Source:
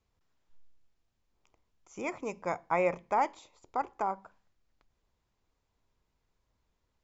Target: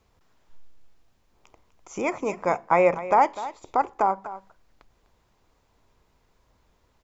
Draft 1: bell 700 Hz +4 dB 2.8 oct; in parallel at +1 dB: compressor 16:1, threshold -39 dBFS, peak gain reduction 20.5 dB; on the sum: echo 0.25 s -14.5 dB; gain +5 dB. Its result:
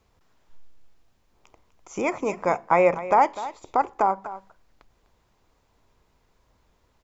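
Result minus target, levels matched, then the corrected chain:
compressor: peak gain reduction -6 dB
bell 700 Hz +4 dB 2.8 oct; in parallel at +1 dB: compressor 16:1, threshold -45.5 dBFS, peak gain reduction 26.5 dB; on the sum: echo 0.25 s -14.5 dB; gain +5 dB

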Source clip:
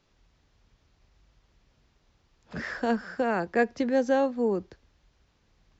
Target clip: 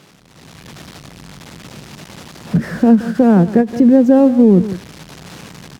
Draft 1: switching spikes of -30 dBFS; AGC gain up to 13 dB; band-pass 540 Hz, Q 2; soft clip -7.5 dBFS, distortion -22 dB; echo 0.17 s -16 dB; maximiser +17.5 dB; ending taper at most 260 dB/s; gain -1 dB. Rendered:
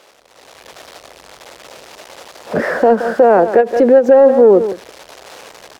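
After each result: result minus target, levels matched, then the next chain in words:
125 Hz band -15.5 dB; switching spikes: distortion -11 dB
switching spikes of -30 dBFS; AGC gain up to 13 dB; band-pass 160 Hz, Q 2; soft clip -7.5 dBFS, distortion -36 dB; echo 0.17 s -16 dB; maximiser +17.5 dB; ending taper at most 260 dB/s; gain -1 dB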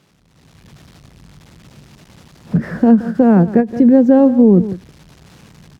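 switching spikes: distortion -11 dB
switching spikes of -19 dBFS; AGC gain up to 13 dB; band-pass 160 Hz, Q 2; soft clip -7.5 dBFS, distortion -36 dB; echo 0.17 s -16 dB; maximiser +17.5 dB; ending taper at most 260 dB/s; gain -1 dB

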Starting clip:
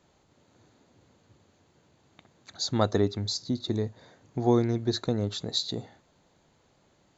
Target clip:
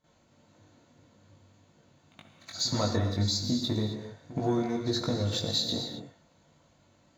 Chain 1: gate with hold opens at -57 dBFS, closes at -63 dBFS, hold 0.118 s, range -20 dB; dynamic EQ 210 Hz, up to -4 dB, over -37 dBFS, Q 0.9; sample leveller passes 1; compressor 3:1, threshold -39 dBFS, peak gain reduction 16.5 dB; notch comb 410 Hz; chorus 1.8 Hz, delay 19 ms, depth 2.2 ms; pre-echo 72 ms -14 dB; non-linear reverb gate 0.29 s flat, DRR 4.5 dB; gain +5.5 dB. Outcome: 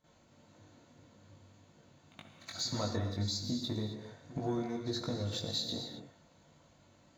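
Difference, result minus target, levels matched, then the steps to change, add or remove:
compressor: peak gain reduction +7 dB
change: compressor 3:1, threshold -28.5 dBFS, peak gain reduction 9.5 dB

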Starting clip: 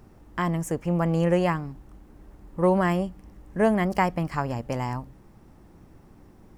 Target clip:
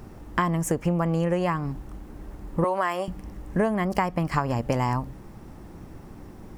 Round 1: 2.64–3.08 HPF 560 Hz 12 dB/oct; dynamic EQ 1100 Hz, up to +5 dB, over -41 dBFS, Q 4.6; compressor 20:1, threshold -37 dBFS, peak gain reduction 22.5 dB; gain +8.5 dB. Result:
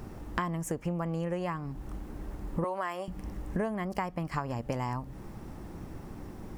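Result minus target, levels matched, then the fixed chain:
compressor: peak gain reduction +8.5 dB
2.64–3.08 HPF 560 Hz 12 dB/oct; dynamic EQ 1100 Hz, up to +5 dB, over -41 dBFS, Q 4.6; compressor 20:1, threshold -28 dBFS, peak gain reduction 14 dB; gain +8.5 dB

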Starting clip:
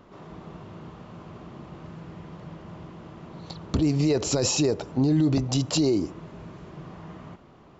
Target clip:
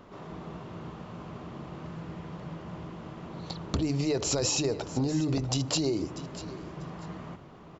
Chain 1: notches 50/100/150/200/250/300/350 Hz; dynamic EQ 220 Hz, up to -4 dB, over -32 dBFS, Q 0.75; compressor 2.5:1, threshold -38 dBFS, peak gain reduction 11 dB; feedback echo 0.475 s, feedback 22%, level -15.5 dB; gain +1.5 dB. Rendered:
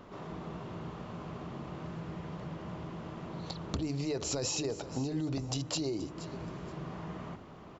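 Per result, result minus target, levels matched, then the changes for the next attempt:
compressor: peak gain reduction +6 dB; echo 0.167 s early
change: compressor 2.5:1, threshold -28 dBFS, peak gain reduction 5 dB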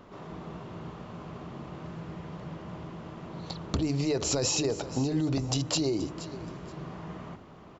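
echo 0.167 s early
change: feedback echo 0.642 s, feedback 22%, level -15.5 dB

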